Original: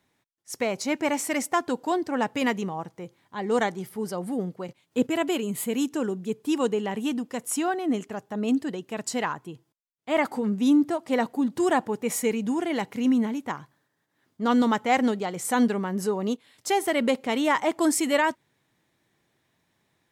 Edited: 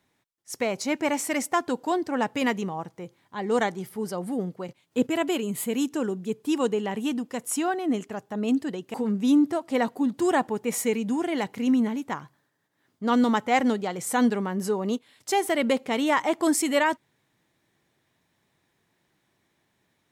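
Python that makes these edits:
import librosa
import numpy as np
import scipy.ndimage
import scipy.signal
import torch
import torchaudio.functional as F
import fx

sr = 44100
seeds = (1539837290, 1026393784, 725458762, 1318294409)

y = fx.edit(x, sr, fx.cut(start_s=8.94, length_s=1.38), tone=tone)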